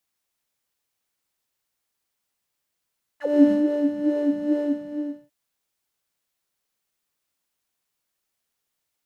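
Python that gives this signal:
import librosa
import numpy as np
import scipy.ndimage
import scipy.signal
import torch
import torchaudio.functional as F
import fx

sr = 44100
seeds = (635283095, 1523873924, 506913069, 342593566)

y = fx.sub_patch_wobble(sr, seeds[0], note=74, wave='square', wave2='saw', interval_st=0, level2_db=-16.5, sub_db=-5.5, noise_db=-3, kind='bandpass', cutoff_hz=200.0, q=6.3, env_oct=3.5, env_decay_s=0.06, env_sustain_pct=15, attack_ms=312.0, decay_s=0.12, sustain_db=-10.5, release_s=0.74, note_s=1.36, lfo_hz=2.3, wobble_oct=0.5)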